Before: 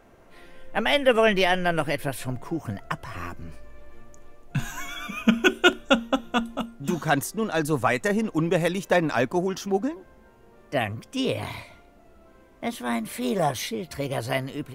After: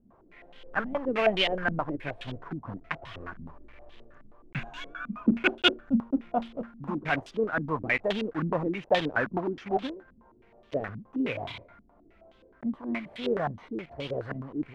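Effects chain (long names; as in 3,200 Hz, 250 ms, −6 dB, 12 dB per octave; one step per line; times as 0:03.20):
one scale factor per block 3 bits
low-pass on a step sequencer 9.5 Hz 220–3,300 Hz
level −8.5 dB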